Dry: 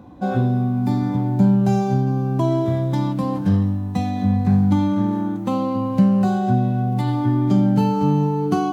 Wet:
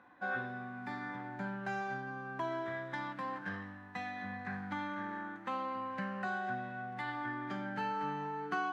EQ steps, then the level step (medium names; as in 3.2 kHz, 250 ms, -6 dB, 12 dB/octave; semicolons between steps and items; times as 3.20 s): band-pass filter 1.7 kHz, Q 4.6; +5.0 dB